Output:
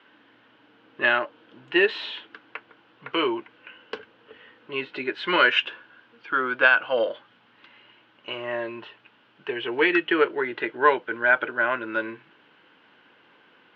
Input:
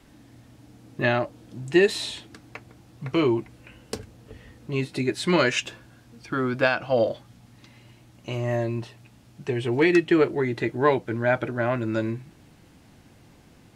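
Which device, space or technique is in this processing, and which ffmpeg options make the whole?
phone earpiece: -af "highpass=440,equalizer=f=450:t=q:w=4:g=3,equalizer=f=700:t=q:w=4:g=-6,equalizer=f=1k:t=q:w=4:g=5,equalizer=f=1.5k:t=q:w=4:g=10,equalizer=f=3k:t=q:w=4:g=9,lowpass=f=3.3k:w=0.5412,lowpass=f=3.3k:w=1.3066"

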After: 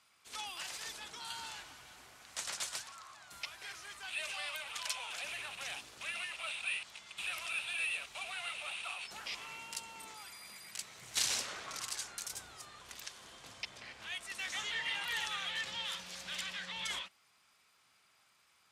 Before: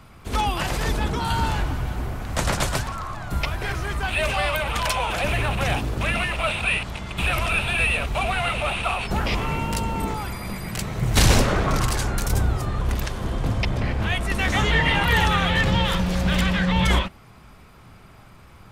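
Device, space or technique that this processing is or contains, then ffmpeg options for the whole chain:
piezo pickup straight into a mixer: -af "lowpass=7.2k,aderivative,volume=-5dB"

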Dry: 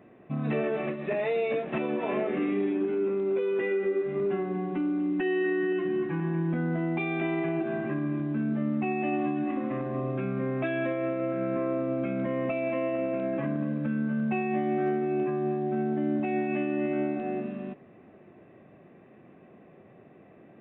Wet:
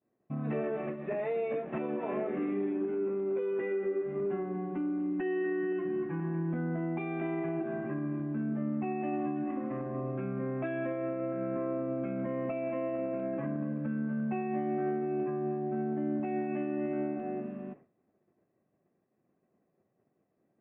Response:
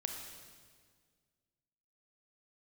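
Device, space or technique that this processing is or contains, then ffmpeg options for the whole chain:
hearing-loss simulation: -af "lowpass=1.8k,agate=range=-33dB:threshold=-41dB:ratio=3:detection=peak,volume=-4.5dB"

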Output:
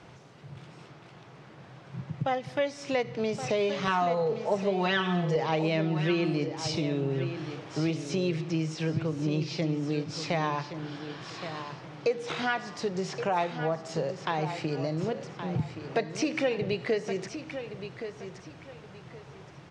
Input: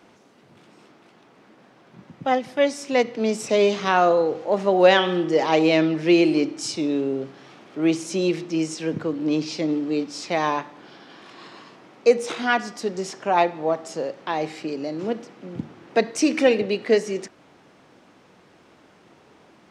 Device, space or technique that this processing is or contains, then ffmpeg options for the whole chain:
jukebox: -filter_complex "[0:a]acrossover=split=5200[a][b];[b]acompressor=threshold=-47dB:ratio=4:attack=1:release=60[c];[a][c]amix=inputs=2:normalize=0,asettb=1/sr,asplit=3[d][e][f];[d]atrim=end=3.874[g];[e]atrim=start=3.87:end=5.36,asetpts=PTS-STARTPTS,afade=t=in:d=0.004:c=qsin,afade=t=out:st=1.486:d=0.004:c=qsin,aecho=1:1:4.6:0.94,atrim=end_sample=65709[h];[f]atrim=start=5.356[i];[g][h]acrossfade=d=0.004:c1=hsin:c2=qsin[j];[j][i]acrossfade=d=0.004:c1=qsin:c2=hsin,lowpass=7.8k,lowshelf=f=180:t=q:w=3:g=7.5,acompressor=threshold=-30dB:ratio=3,aecho=1:1:1121|2242|3363:0.316|0.0854|0.0231,volume=2dB"

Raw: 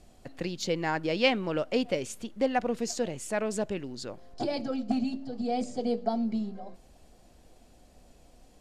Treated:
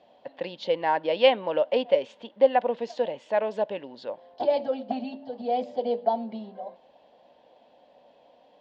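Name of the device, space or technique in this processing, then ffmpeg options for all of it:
phone earpiece: -af "highpass=350,equalizer=f=360:t=q:w=4:g=-7,equalizer=f=560:t=q:w=4:g=9,equalizer=f=920:t=q:w=4:g=9,equalizer=f=1.3k:t=q:w=4:g=-9,equalizer=f=2.3k:t=q:w=4:g=-5,equalizer=f=3.3k:t=q:w=4:g=4,lowpass=f=3.5k:w=0.5412,lowpass=f=3.5k:w=1.3066,volume=2.5dB"

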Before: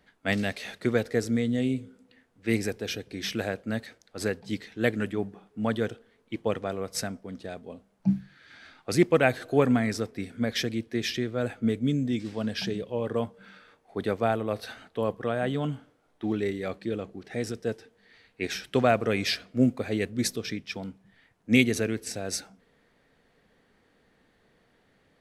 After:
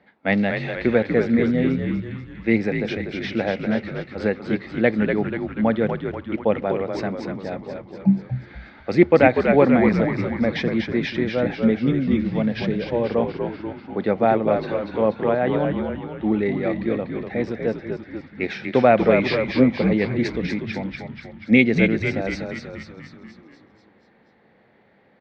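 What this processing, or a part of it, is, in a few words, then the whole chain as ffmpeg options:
frequency-shifting delay pedal into a guitar cabinet: -filter_complex "[0:a]asplit=9[a][b][c][d][e][f][g][h][i];[b]adelay=242,afreqshift=-68,volume=-5dB[j];[c]adelay=484,afreqshift=-136,volume=-9.6dB[k];[d]adelay=726,afreqshift=-204,volume=-14.2dB[l];[e]adelay=968,afreqshift=-272,volume=-18.7dB[m];[f]adelay=1210,afreqshift=-340,volume=-23.3dB[n];[g]adelay=1452,afreqshift=-408,volume=-27.9dB[o];[h]adelay=1694,afreqshift=-476,volume=-32.5dB[p];[i]adelay=1936,afreqshift=-544,volume=-37.1dB[q];[a][j][k][l][m][n][o][p][q]amix=inputs=9:normalize=0,highpass=91,equalizer=f=210:t=q:w=4:g=7,equalizer=f=340:t=q:w=4:g=4,equalizer=f=550:t=q:w=4:g=7,equalizer=f=830:t=q:w=4:g=8,equalizer=f=2.1k:t=q:w=4:g=6,equalizer=f=3.1k:t=q:w=4:g=-5,lowpass=f=3.9k:w=0.5412,lowpass=f=3.9k:w=1.3066,volume=2.5dB"

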